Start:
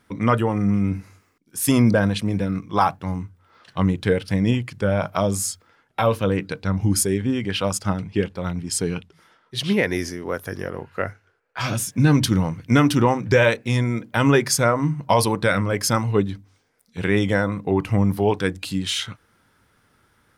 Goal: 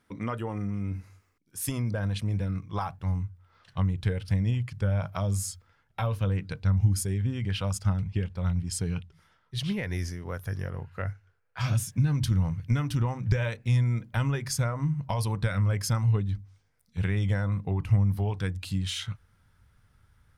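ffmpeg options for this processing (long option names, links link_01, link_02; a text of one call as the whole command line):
ffmpeg -i in.wav -af "acompressor=threshold=-19dB:ratio=6,asubboost=boost=9.5:cutoff=99,volume=-8.5dB" out.wav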